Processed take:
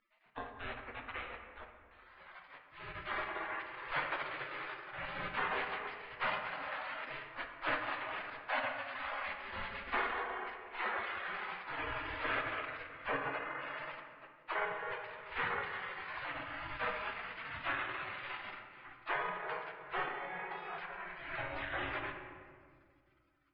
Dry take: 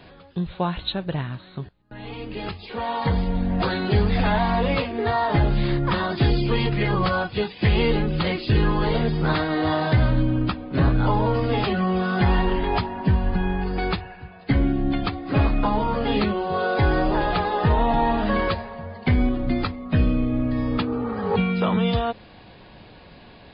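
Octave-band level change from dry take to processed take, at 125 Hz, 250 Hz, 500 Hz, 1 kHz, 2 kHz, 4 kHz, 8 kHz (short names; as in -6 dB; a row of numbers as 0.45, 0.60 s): -33.5 dB, -30.5 dB, -20.0 dB, -14.0 dB, -7.5 dB, -16.0 dB, n/a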